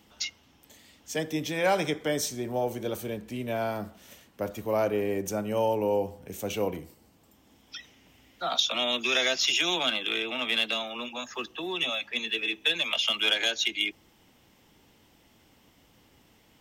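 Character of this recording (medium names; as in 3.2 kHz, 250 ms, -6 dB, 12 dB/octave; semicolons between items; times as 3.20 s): noise floor -62 dBFS; spectral tilt -2.5 dB/octave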